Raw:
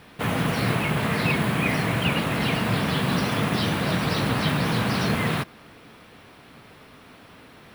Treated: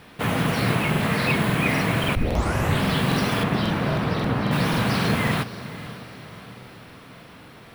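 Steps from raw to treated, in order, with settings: 2.15 s: tape start 0.69 s; 3.40–4.51 s: low-pass 2.4 kHz -> 1.1 kHz 6 dB/octave; echo that smears into a reverb 532 ms, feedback 54%, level -15 dB; crackling interface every 0.27 s, samples 2048, repeat, from 0.91 s; trim +1.5 dB

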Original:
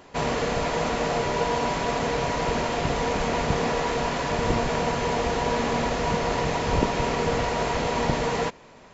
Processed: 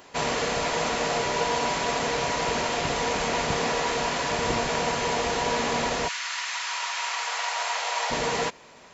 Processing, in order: 6.07–8.10 s: high-pass 1.4 kHz -> 620 Hz 24 dB/octave; tilt EQ +2 dB/octave

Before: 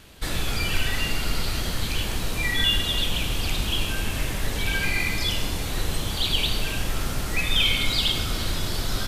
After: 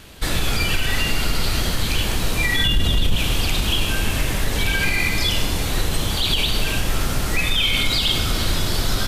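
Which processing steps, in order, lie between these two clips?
2.65–3.16 s: bass shelf 330 Hz +12 dB; peak limiter -15.5 dBFS, peak gain reduction 13 dB; trim +6 dB

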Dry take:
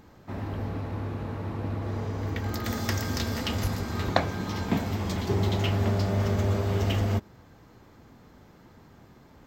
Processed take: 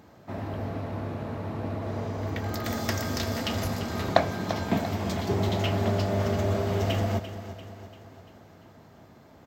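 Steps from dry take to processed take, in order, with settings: high-pass 82 Hz; peaking EQ 650 Hz +7.5 dB 0.3 oct; feedback delay 343 ms, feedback 53%, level -12 dB

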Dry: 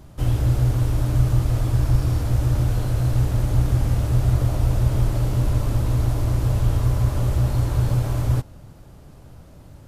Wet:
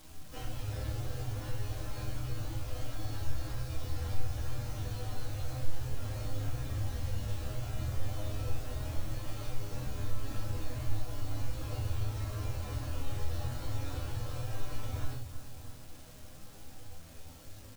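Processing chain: time stretch by phase-locked vocoder 1.8×; on a send: feedback delay 318 ms, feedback 45%, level -14 dB; on the sum: simulated room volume 150 m³, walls furnished, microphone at 2.1 m; compression 1.5:1, threshold -31 dBFS, peak gain reduction 10.5 dB; low-pass 5.2 kHz 12 dB/octave; bass shelf 500 Hz -5 dB; chord resonator C#2 minor, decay 0.43 s; bit crusher 11-bit; treble shelf 3.8 kHz +11.5 dB; trim +4.5 dB

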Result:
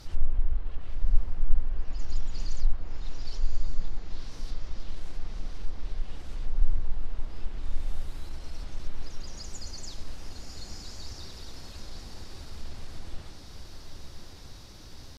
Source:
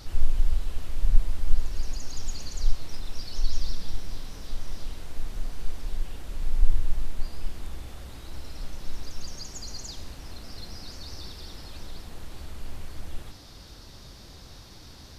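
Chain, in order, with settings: pitch shift +0.5 st; low-pass that closes with the level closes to 1.8 kHz, closed at -16.5 dBFS; echo that smears into a reverb 1118 ms, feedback 42%, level -6 dB; trim -3 dB

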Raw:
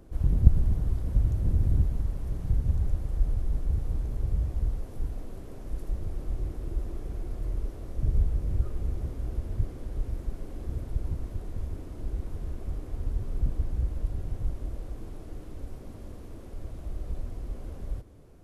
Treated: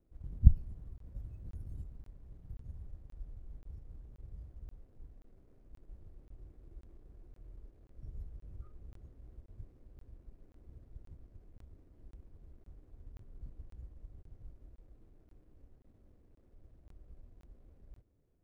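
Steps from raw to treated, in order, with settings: median filter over 41 samples; spectral noise reduction 18 dB; crackling interface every 0.53 s, samples 1024, zero, from 0.98 s; trim -3 dB

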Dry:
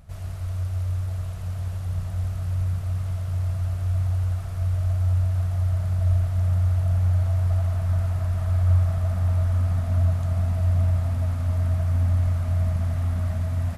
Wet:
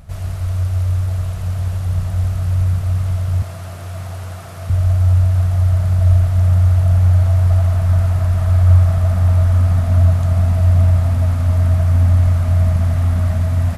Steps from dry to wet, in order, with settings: 3.42–4.70 s: high-pass 200 Hz 12 dB/octave; trim +9 dB

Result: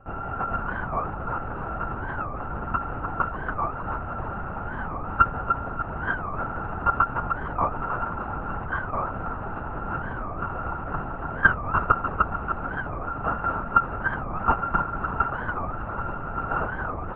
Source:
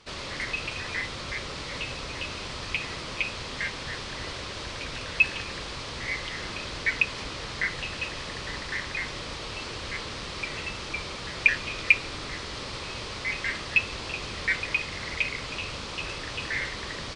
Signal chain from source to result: sorted samples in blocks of 32 samples; low-pass 1.4 kHz 24 dB/octave; peaking EQ 970 Hz +5 dB 0.7 oct; thinning echo 297 ms, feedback 58%, level -6 dB; LPC vocoder at 8 kHz whisper; loudness maximiser +9.5 dB; warped record 45 rpm, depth 250 cents; trim -3 dB

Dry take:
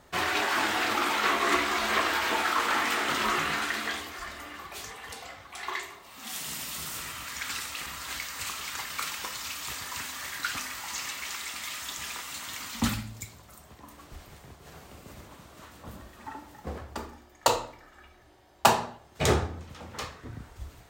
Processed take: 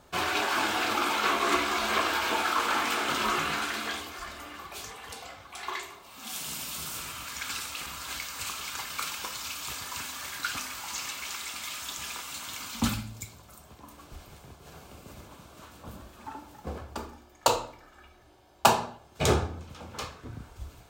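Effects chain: band-stop 1.9 kHz, Q 6.4

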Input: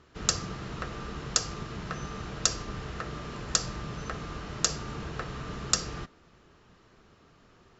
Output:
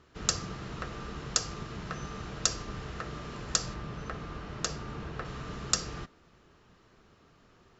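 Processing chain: 3.74–5.25 s: low-pass 3.3 kHz 6 dB/octave; trim -2 dB

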